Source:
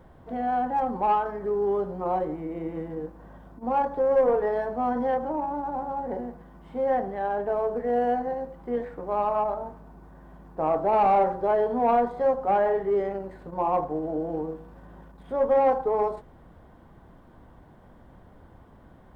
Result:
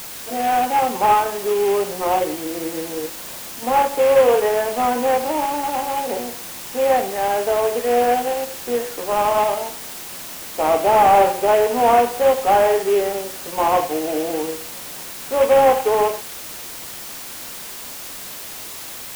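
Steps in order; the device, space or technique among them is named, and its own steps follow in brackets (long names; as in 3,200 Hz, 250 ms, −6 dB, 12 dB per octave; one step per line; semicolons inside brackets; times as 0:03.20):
army field radio (band-pass filter 310–2,900 Hz; variable-slope delta modulation 16 kbit/s; white noise bed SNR 14 dB)
level +8.5 dB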